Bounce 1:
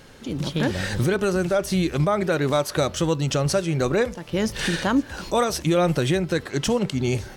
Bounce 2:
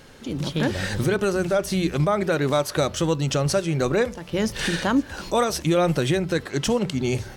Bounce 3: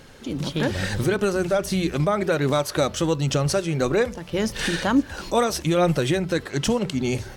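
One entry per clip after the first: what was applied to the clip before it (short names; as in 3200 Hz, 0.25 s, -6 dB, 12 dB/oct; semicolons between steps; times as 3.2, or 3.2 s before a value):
notches 60/120/180 Hz
phaser 1.2 Hz, delay 4.7 ms, feedback 22%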